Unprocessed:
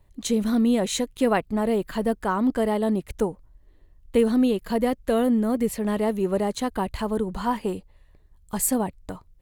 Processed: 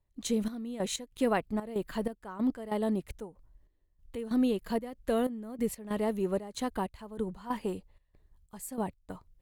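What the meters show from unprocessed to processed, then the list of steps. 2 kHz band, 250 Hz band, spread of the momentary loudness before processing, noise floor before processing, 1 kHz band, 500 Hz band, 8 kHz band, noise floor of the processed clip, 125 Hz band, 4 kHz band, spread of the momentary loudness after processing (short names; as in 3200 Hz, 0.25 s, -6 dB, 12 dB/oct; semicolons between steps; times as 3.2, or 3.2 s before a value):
-8.5 dB, -9.0 dB, 7 LU, -56 dBFS, -9.0 dB, -9.0 dB, -11.0 dB, -72 dBFS, -8.0 dB, -8.0 dB, 12 LU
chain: step gate ".xx..x.xxx" 94 bpm -12 dB; gain -6.5 dB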